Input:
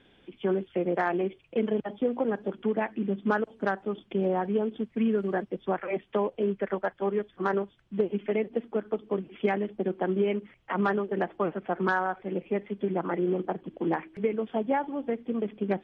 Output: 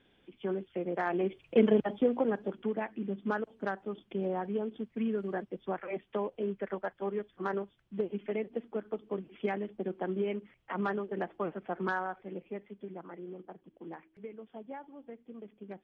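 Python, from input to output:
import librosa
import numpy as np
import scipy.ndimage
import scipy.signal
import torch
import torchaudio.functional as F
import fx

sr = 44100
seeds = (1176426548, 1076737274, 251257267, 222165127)

y = fx.gain(x, sr, db=fx.line((0.92, -7.0), (1.61, 4.0), (2.8, -6.5), (11.98, -6.5), (13.15, -17.0)))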